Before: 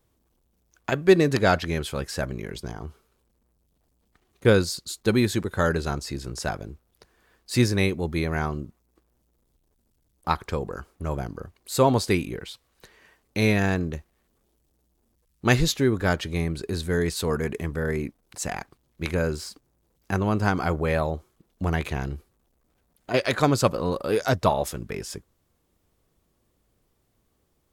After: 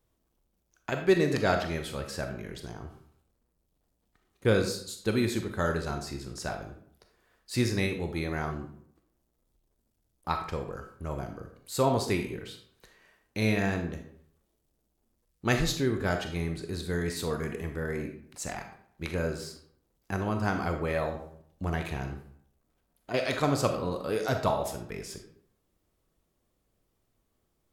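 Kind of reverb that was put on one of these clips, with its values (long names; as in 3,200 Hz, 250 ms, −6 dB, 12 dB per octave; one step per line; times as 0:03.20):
comb and all-pass reverb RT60 0.62 s, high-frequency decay 0.7×, pre-delay 0 ms, DRR 4.5 dB
level −6.5 dB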